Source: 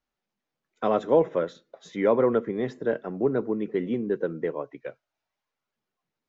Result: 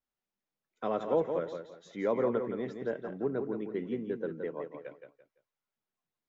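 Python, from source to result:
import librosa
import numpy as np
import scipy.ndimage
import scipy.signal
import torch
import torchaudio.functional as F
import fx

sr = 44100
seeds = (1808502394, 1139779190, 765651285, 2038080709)

y = fx.echo_feedback(x, sr, ms=170, feedback_pct=28, wet_db=-7.0)
y = y * librosa.db_to_amplitude(-8.5)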